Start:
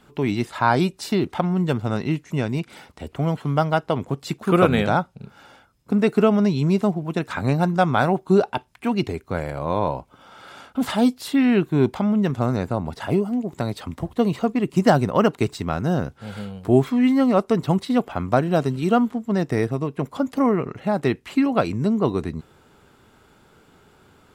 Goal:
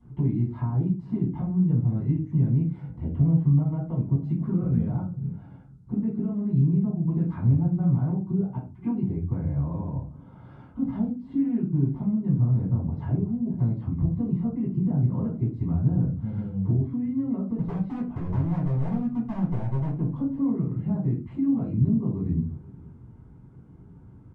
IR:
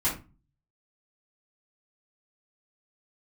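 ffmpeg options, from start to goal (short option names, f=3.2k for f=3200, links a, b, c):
-filter_complex "[0:a]deesser=0.95,alimiter=limit=-13dB:level=0:latency=1:release=428,acompressor=threshold=-28dB:ratio=5,bandpass=f=110:t=q:w=1.3:csg=0,asettb=1/sr,asplit=3[a][b][c];[a]atrim=end=17.584[d];[b]atrim=start=17.58:end=19.95,asetpts=PTS-STARTPTS,afade=t=in:d=0.004:c=qsin,afade=t=out:st=2.366:d=0.004:c=qsin,aeval=exprs='0.0188*(abs(mod(val(0)/0.0188+3,4)-2)-1)':c=same[e];[c]atrim=start=19.946[f];[d][e]acrossfade=d=0.004:c1=hsin:c2=qsin[g];[g][f]acrossfade=d=0.004:c1=qsin:c2=hsin,asplit=2[h][i];[i]adelay=22,volume=-12.5dB[j];[h][j]amix=inputs=2:normalize=0,asplit=2[k][l];[l]adelay=478.1,volume=-21dB,highshelf=f=4k:g=-10.8[m];[k][m]amix=inputs=2:normalize=0[n];[1:a]atrim=start_sample=2205[o];[n][o]afir=irnorm=-1:irlink=0" -ar 22050 -c:a nellymoser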